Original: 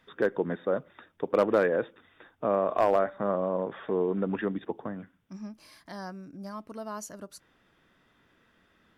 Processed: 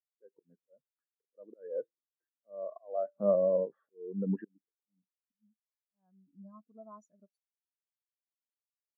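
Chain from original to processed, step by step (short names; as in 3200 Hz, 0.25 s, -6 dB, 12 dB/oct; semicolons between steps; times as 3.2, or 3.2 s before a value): auto swell 0.448 s; spectral expander 2.5:1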